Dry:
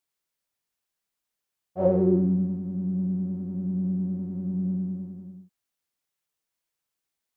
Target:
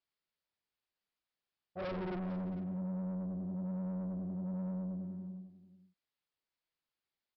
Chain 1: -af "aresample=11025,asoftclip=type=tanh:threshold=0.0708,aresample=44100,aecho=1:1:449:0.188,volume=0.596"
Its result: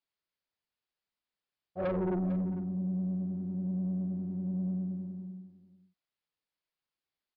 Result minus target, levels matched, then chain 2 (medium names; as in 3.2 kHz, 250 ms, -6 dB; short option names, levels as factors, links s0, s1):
saturation: distortion -5 dB
-af "aresample=11025,asoftclip=type=tanh:threshold=0.0237,aresample=44100,aecho=1:1:449:0.188,volume=0.596"